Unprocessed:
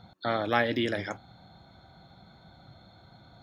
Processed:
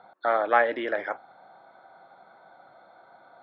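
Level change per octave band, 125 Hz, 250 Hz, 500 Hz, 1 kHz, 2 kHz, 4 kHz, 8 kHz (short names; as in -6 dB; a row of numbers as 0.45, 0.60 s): under -20 dB, -5.5 dB, +4.5 dB, +6.5 dB, +3.5 dB, -8.5 dB, under -20 dB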